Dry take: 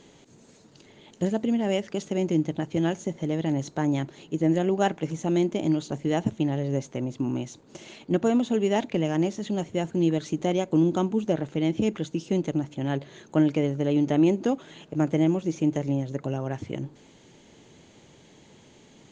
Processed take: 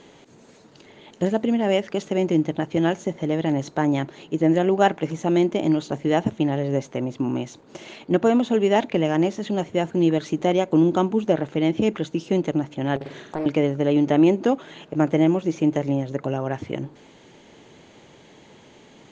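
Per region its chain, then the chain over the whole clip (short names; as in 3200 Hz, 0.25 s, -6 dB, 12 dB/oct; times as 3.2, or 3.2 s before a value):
12.96–13.46 flutter echo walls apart 8.2 m, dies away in 0.6 s + compressor 3:1, threshold -31 dBFS + Doppler distortion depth 0.74 ms
whole clip: LPF 2500 Hz 6 dB/oct; low shelf 320 Hz -8.5 dB; gain +8.5 dB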